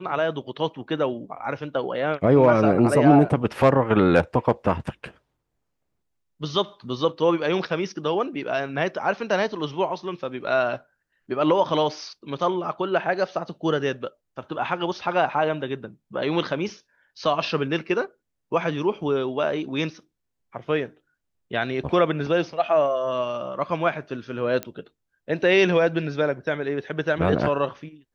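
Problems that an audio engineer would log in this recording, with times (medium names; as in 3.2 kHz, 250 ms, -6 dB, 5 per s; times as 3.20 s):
24.63 s: pop -14 dBFS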